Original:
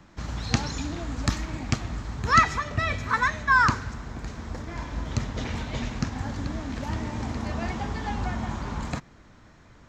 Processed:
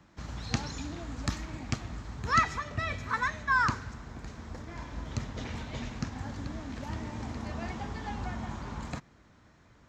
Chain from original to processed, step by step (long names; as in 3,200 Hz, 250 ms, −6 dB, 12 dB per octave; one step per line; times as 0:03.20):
high-pass filter 42 Hz
level −6.5 dB